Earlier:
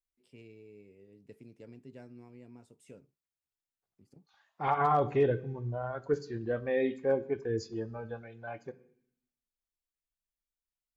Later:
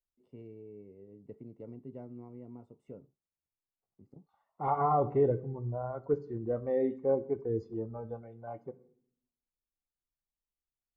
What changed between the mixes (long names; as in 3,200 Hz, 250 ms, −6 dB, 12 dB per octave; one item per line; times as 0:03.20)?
first voice +4.5 dB
master: add Savitzky-Golay smoothing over 65 samples